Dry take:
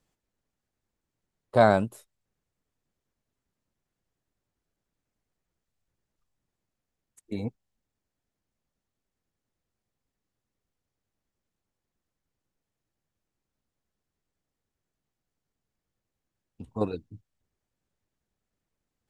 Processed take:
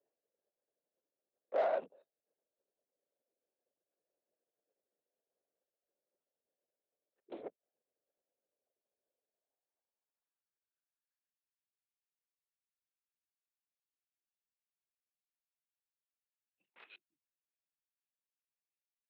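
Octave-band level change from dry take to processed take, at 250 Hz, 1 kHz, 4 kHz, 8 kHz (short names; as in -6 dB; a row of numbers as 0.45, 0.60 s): -25.5 dB, -14.0 dB, -17.0 dB, under -20 dB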